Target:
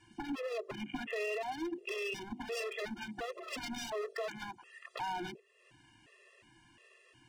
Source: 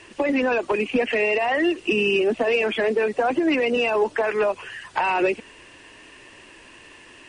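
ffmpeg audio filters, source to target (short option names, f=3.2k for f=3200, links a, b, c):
-filter_complex "[0:a]equalizer=f=130:t=o:w=0.77:g=13.5,bandreject=f=50:t=h:w=6,bandreject=f=100:t=h:w=6,bandreject=f=150:t=h:w=6,bandreject=f=200:t=h:w=6,bandreject=f=250:t=h:w=6,bandreject=f=300:t=h:w=6,bandreject=f=350:t=h:w=6,bandreject=f=400:t=h:w=6,bandreject=f=450:t=h:w=6,afwtdn=0.0316,asettb=1/sr,asplit=3[a][b][c];[a]atrim=end=2.554[d];[b]atrim=start=2.55:end=4.79,asetpts=PTS-STARTPTS,afade=t=in:d=0.004:c=qsin,afade=t=out:st=2.236:d=0.004:c=qsin,highshelf=f=2.3k:g=8[e];[c]atrim=start=4.786[f];[d][e]acrossfade=d=0.004:c1=hsin:c2=qsin[g];[g][f]acrossfade=d=0.004:c1=qsin:c2=hsin,aeval=exprs='0.126*(abs(mod(val(0)/0.126+3,4)-2)-1)':c=same,acompressor=threshold=-43dB:ratio=3,afftfilt=real='re*gt(sin(2*PI*1.4*pts/sr)*(1-2*mod(floor(b*sr/1024/350),2)),0)':imag='im*gt(sin(2*PI*1.4*pts/sr)*(1-2*mod(floor(b*sr/1024/350),2)),0)':win_size=1024:overlap=0.75,volume=2.5dB"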